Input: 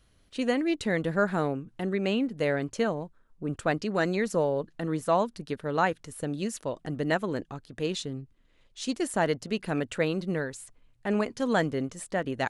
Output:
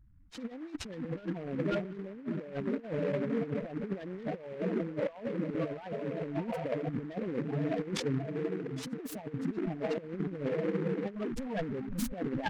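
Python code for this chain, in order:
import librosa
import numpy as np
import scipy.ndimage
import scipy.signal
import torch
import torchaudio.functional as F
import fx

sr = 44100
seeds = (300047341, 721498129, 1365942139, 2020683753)

y = fx.clip_1bit(x, sr, at=(11.15, 12.14))
y = fx.echo_diffused(y, sr, ms=608, feedback_pct=50, wet_db=-7)
y = fx.spec_topn(y, sr, count=8)
y = fx.over_compress(y, sr, threshold_db=-34.0, ratio=-0.5)
y = fx.noise_mod_delay(y, sr, seeds[0], noise_hz=1300.0, depth_ms=0.06)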